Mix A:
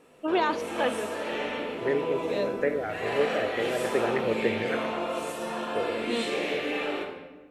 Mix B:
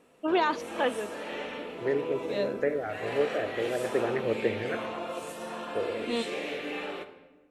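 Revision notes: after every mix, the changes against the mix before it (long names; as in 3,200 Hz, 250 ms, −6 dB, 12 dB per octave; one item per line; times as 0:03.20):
second voice: add high-frequency loss of the air 380 metres
background: send −11.0 dB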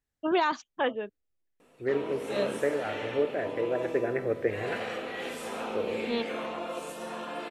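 background: entry +1.60 s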